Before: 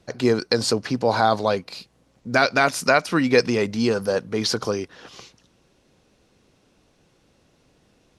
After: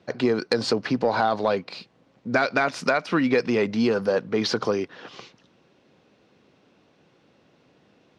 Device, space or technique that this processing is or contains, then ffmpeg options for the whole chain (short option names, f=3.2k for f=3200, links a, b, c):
AM radio: -af "highpass=140,lowpass=3.7k,acompressor=threshold=-19dB:ratio=6,asoftclip=type=tanh:threshold=-10.5dB,volume=2.5dB"